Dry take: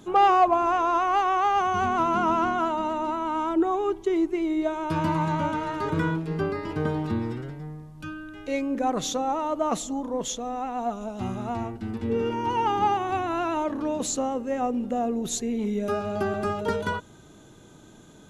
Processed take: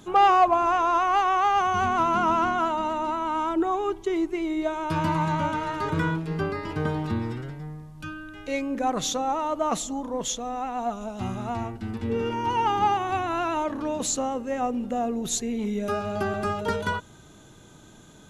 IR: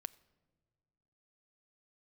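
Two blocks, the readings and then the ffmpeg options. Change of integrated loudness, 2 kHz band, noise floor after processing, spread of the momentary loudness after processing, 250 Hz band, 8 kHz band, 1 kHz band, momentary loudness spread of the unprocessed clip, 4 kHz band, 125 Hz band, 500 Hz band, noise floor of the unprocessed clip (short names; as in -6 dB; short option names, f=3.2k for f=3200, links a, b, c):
+0.5 dB, +2.0 dB, -50 dBFS, 10 LU, -1.5 dB, +2.5 dB, +1.0 dB, 9 LU, +2.5 dB, +1.0 dB, -1.0 dB, -50 dBFS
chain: -af "equalizer=f=350:t=o:w=2.1:g=-4.5,volume=2.5dB"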